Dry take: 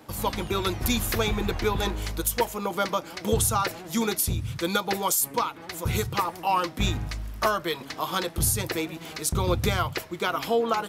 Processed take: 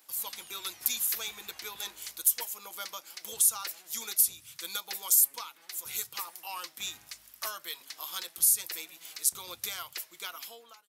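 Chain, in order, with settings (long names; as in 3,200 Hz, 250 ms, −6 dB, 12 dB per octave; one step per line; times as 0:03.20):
fade-out on the ending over 0.67 s
first difference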